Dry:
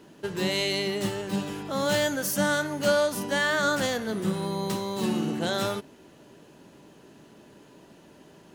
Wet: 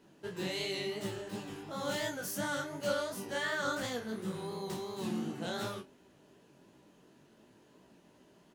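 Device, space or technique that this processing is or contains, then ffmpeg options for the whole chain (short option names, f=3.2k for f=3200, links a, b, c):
double-tracked vocal: -filter_complex "[0:a]asplit=2[a][b];[b]adelay=28,volume=-8dB[c];[a][c]amix=inputs=2:normalize=0,flanger=delay=15.5:depth=7.8:speed=2.8,volume=-7.5dB"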